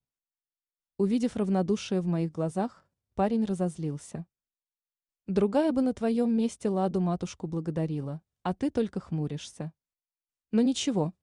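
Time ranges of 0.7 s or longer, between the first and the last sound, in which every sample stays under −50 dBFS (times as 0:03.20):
0:04.23–0:05.28
0:09.70–0:10.53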